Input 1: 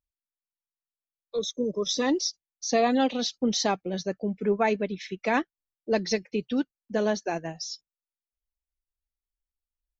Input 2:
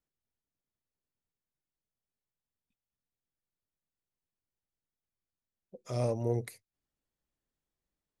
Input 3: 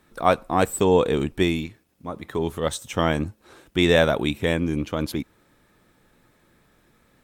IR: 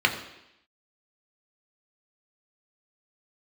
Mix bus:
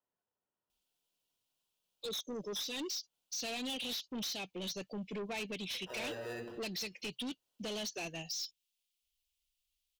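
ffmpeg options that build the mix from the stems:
-filter_complex "[0:a]highshelf=frequency=2100:width_type=q:width=3:gain=12,acompressor=threshold=-21dB:ratio=10,adelay=700,volume=-2.5dB[link_01];[1:a]highpass=270,acrusher=samples=20:mix=1:aa=0.000001,volume=-7.5dB,asplit=2[link_02][link_03];[link_03]volume=-7.5dB[link_04];[3:a]atrim=start_sample=2205[link_05];[link_04][link_05]afir=irnorm=-1:irlink=0[link_06];[link_01][link_02][link_06]amix=inputs=3:normalize=0,asoftclip=type=tanh:threshold=-31.5dB,alimiter=level_in=12.5dB:limit=-24dB:level=0:latency=1:release=158,volume=-12.5dB"

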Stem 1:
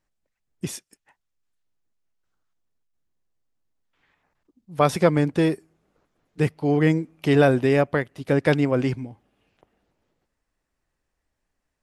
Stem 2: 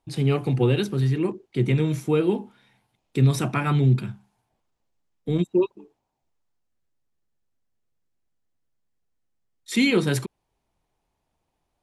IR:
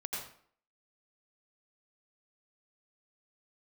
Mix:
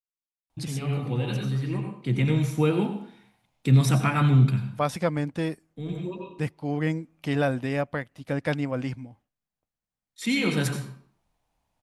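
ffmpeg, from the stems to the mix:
-filter_complex "[0:a]agate=range=-33dB:threshold=-46dB:ratio=3:detection=peak,volume=-6dB,asplit=2[link_01][link_02];[1:a]adelay=500,volume=-2dB,asplit=2[link_03][link_04];[link_04]volume=-5.5dB[link_05];[link_02]apad=whole_len=543484[link_06];[link_03][link_06]sidechaincompress=threshold=-53dB:ratio=8:attack=7.5:release=1010[link_07];[2:a]atrim=start_sample=2205[link_08];[link_05][link_08]afir=irnorm=-1:irlink=0[link_09];[link_01][link_07][link_09]amix=inputs=3:normalize=0,equalizer=frequency=390:width_type=o:width=0.33:gain=-10.5"

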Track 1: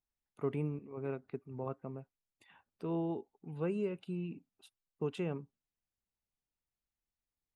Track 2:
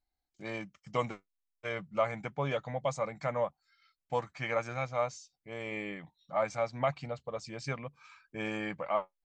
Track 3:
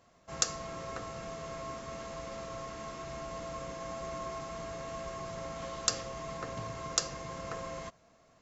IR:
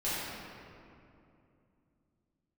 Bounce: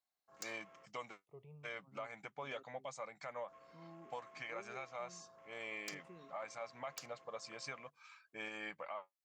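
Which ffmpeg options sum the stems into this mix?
-filter_complex "[0:a]asplit=2[link_01][link_02];[link_02]afreqshift=0.53[link_03];[link_01][link_03]amix=inputs=2:normalize=1,adelay=900,volume=-18.5dB[link_04];[1:a]highpass=frequency=910:poles=1,alimiter=level_in=8dB:limit=-24dB:level=0:latency=1:release=262,volume=-8dB,volume=-2.5dB[link_05];[2:a]afwtdn=0.00447,highpass=frequency=790:poles=1,aeval=exprs='0.119*(abs(mod(val(0)/0.119+3,4)-2)-1)':channel_layout=same,volume=-16.5dB,asplit=3[link_06][link_07][link_08];[link_06]atrim=end=0.86,asetpts=PTS-STARTPTS,afade=type=out:start_time=0.856:duration=0.004:curve=hsin[link_09];[link_07]atrim=start=0.86:end=3.48,asetpts=PTS-STARTPTS,volume=0[link_10];[link_08]atrim=start=3.48,asetpts=PTS-STARTPTS,afade=type=in:duration=0.004:curve=hsin[link_11];[link_09][link_10][link_11]concat=n=3:v=0:a=1[link_12];[link_04][link_05][link_12]amix=inputs=3:normalize=0"

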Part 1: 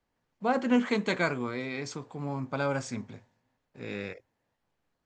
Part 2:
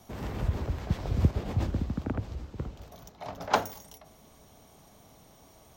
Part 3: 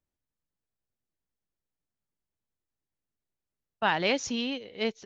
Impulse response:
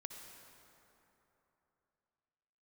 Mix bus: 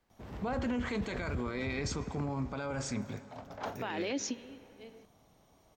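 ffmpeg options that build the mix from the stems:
-filter_complex "[0:a]alimiter=limit=-23dB:level=0:latency=1:release=399,volume=2.5dB,asplit=3[link_01][link_02][link_03];[link_02]volume=-7.5dB[link_04];[1:a]highshelf=frequency=6200:gain=-8,adelay=100,volume=-8dB[link_05];[2:a]highpass=frequency=300:width_type=q:width=3.4,volume=-1.5dB,asplit=2[link_06][link_07];[link_07]volume=-22dB[link_08];[link_03]apad=whole_len=222763[link_09];[link_06][link_09]sidechaingate=range=-33dB:threshold=-59dB:ratio=16:detection=peak[link_10];[3:a]atrim=start_sample=2205[link_11];[link_04][link_08]amix=inputs=2:normalize=0[link_12];[link_12][link_11]afir=irnorm=-1:irlink=0[link_13];[link_01][link_05][link_10][link_13]amix=inputs=4:normalize=0,alimiter=level_in=2.5dB:limit=-24dB:level=0:latency=1:release=29,volume=-2.5dB"

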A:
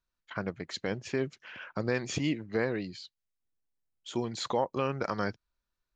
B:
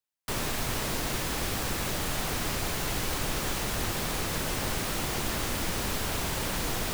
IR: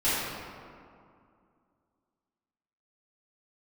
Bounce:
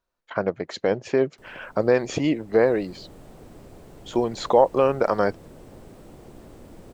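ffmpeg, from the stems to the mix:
-filter_complex "[0:a]volume=1.5dB[link_01];[1:a]equalizer=frequency=8000:width=5.6:gain=5.5,acrossover=split=370[link_02][link_03];[link_03]acompressor=threshold=-57dB:ratio=2[link_04];[link_02][link_04]amix=inputs=2:normalize=0,adelay=1100,volume=-14dB,afade=type=in:start_time=2.35:duration=0.6:silence=0.421697[link_05];[link_01][link_05]amix=inputs=2:normalize=0,equalizer=frequency=580:width=0.66:gain=13"

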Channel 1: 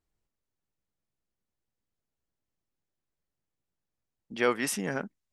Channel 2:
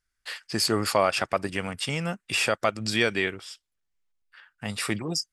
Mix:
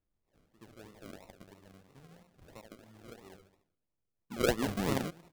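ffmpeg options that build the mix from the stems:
ffmpeg -i stem1.wav -i stem2.wav -filter_complex "[0:a]volume=-0.5dB,asplit=2[link_01][link_02];[1:a]volume=-6dB,asplit=2[link_03][link_04];[link_04]volume=-20.5dB[link_05];[link_02]apad=whole_len=234920[link_06];[link_03][link_06]sidechaingate=range=-34dB:threshold=-39dB:ratio=16:detection=peak[link_07];[link_05]aecho=0:1:73|146|219|292|365|438:1|0.43|0.185|0.0795|0.0342|0.0147[link_08];[link_01][link_07][link_08]amix=inputs=3:normalize=0,highshelf=frequency=2700:gain=-11,acrusher=samples=39:mix=1:aa=0.000001:lfo=1:lforange=23.4:lforate=3" out.wav

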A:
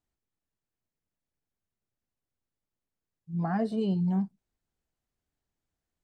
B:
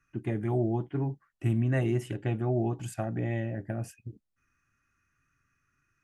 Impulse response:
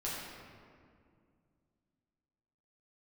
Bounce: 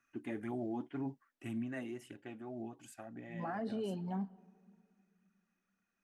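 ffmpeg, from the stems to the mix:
-filter_complex "[0:a]acrossover=split=380 4000:gain=0.178 1 0.224[link_01][link_02][link_03];[link_01][link_02][link_03]amix=inputs=3:normalize=0,alimiter=level_in=6.5dB:limit=-24dB:level=0:latency=1,volume=-6.5dB,volume=-1dB,asplit=2[link_04][link_05];[link_05]volume=-24dB[link_06];[1:a]highpass=frequency=800:poles=1,volume=-3dB,afade=type=out:start_time=1.11:duration=0.78:silence=0.375837[link_07];[2:a]atrim=start_sample=2205[link_08];[link_06][link_08]afir=irnorm=-1:irlink=0[link_09];[link_04][link_07][link_09]amix=inputs=3:normalize=0,equalizer=frequency=250:width_type=o:width=0.4:gain=13.5,aphaser=in_gain=1:out_gain=1:delay=4.1:decay=0.36:speed=1.9:type=triangular,alimiter=level_in=7.5dB:limit=-24dB:level=0:latency=1:release=12,volume=-7.5dB"

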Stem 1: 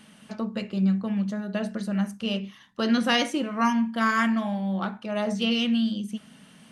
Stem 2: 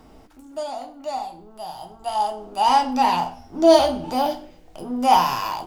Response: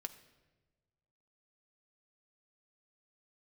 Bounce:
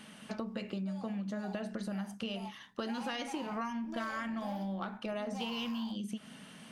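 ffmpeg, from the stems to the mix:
-filter_complex "[0:a]acompressor=threshold=-32dB:ratio=3,bass=frequency=250:gain=-4,treble=frequency=4000:gain=-2,volume=1.5dB,asplit=2[link_01][link_02];[1:a]asoftclip=type=tanh:threshold=-20dB,adelay=300,volume=-17.5dB[link_03];[link_02]apad=whole_len=262969[link_04];[link_03][link_04]sidechaingate=range=-33dB:threshold=-40dB:ratio=16:detection=peak[link_05];[link_01][link_05]amix=inputs=2:normalize=0,acompressor=threshold=-35dB:ratio=4"

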